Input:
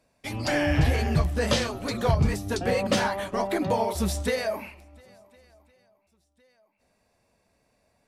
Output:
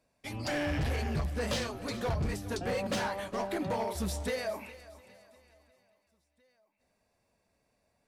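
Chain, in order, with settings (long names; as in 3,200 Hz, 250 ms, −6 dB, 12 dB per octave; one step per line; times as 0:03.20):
gain into a clipping stage and back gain 21 dB
feedback echo with a high-pass in the loop 409 ms, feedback 39%, high-pass 420 Hz, level −16.5 dB
level −6.5 dB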